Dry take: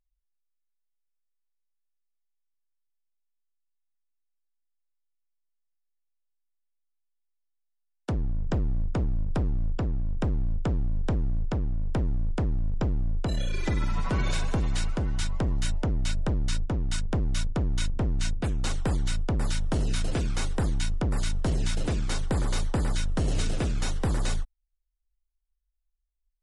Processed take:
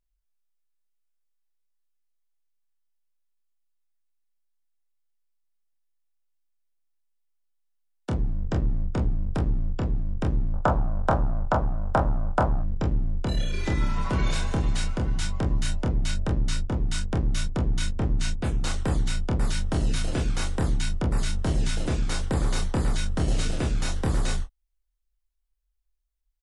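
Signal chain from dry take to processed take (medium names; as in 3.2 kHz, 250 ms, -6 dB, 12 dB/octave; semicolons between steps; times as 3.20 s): 10.53–12.61 s: high-order bell 930 Hz +15.5 dB; early reflections 27 ms -4 dB, 44 ms -12.5 dB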